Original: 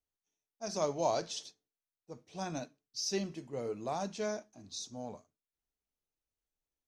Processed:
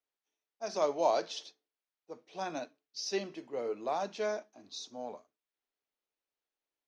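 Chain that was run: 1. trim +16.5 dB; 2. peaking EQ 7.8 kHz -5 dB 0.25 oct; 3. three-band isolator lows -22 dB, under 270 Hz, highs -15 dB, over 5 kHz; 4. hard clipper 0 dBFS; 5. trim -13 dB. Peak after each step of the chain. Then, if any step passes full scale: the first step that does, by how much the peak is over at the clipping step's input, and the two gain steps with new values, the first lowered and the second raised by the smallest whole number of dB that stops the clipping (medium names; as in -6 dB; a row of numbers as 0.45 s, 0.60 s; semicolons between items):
-2.0 dBFS, -2.5 dBFS, -3.5 dBFS, -3.5 dBFS, -16.5 dBFS; nothing clips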